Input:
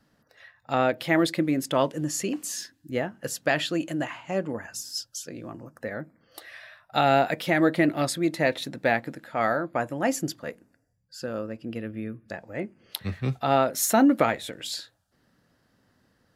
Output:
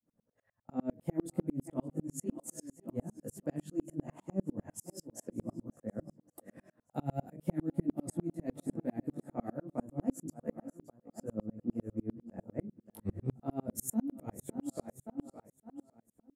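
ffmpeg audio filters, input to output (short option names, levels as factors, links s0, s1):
-filter_complex "[0:a]equalizer=f=4200:w=1:g=-6.5,bandreject=f=50:t=h:w=6,bandreject=f=100:t=h:w=6,bandreject=f=150:t=h:w=6,asplit=2[s0][s1];[s1]aecho=0:1:564|1128|1692|2256:0.158|0.0777|0.0381|0.0186[s2];[s0][s2]amix=inputs=2:normalize=0,agate=range=0.501:threshold=0.00447:ratio=16:detection=peak,firequalizer=gain_entry='entry(150,0);entry(220,5);entry(340,0);entry(1500,-17);entry(3800,-23);entry(8200,-3);entry(12000,-8)':delay=0.05:min_phase=1,acrossover=split=270|3000[s3][s4][s5];[s4]acompressor=threshold=0.0141:ratio=3[s6];[s3][s6][s5]amix=inputs=3:normalize=0,flanger=delay=17.5:depth=3.6:speed=0.37,acompressor=threshold=0.0158:ratio=2,aeval=exprs='val(0)*pow(10,-39*if(lt(mod(-10*n/s,1),2*abs(-10)/1000),1-mod(-10*n/s,1)/(2*abs(-10)/1000),(mod(-10*n/s,1)-2*abs(-10)/1000)/(1-2*abs(-10)/1000))/20)':c=same,volume=2.99"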